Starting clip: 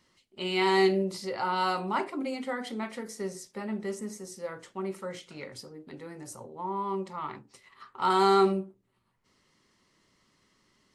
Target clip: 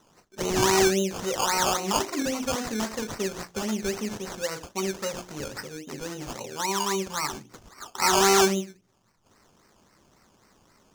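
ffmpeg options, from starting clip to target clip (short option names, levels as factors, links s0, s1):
-filter_complex "[0:a]bandreject=f=60:t=h:w=6,bandreject=f=120:t=h:w=6,bandreject=f=180:t=h:w=6,bandreject=f=240:t=h:w=6,bandreject=f=300:t=h:w=6,bandreject=f=360:t=h:w=6,asplit=2[s0][s1];[s1]acompressor=threshold=0.0178:ratio=6,volume=1.33[s2];[s0][s2]amix=inputs=2:normalize=0,acrusher=samples=18:mix=1:aa=0.000001:lfo=1:lforange=10.8:lforate=3.7,equalizer=f=6200:w=2.1:g=11"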